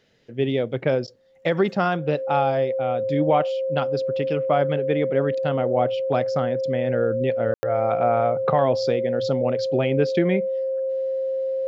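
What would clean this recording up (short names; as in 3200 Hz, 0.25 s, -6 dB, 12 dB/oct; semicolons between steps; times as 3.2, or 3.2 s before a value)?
notch 530 Hz, Q 30; room tone fill 7.54–7.63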